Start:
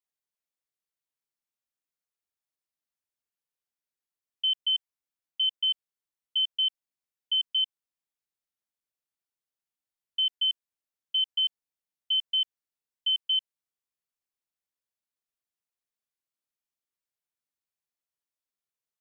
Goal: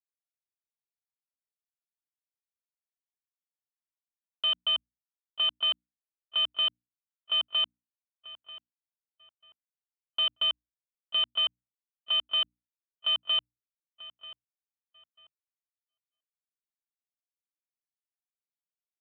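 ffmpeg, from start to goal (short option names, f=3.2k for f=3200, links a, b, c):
-filter_complex "[0:a]afwtdn=0.0112,aresample=8000,acrusher=bits=4:mix=0:aa=0.5,aresample=44100,bandreject=f=60:t=h:w=6,bandreject=f=120:t=h:w=6,bandreject=f=180:t=h:w=6,bandreject=f=240:t=h:w=6,bandreject=f=300:t=h:w=6,asplit=2[a][b];[b]adelay=939,lowpass=f=2.8k:p=1,volume=-15.5dB,asplit=2[c][d];[d]adelay=939,lowpass=f=2.8k:p=1,volume=0.29,asplit=2[e][f];[f]adelay=939,lowpass=f=2.8k:p=1,volume=0.29[g];[a][c][e][g]amix=inputs=4:normalize=0,agate=range=-33dB:threshold=-59dB:ratio=3:detection=peak"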